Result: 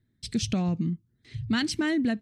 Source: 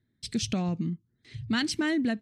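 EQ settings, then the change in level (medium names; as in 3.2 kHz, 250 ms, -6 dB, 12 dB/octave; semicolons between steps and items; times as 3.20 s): bass shelf 140 Hz +7 dB; 0.0 dB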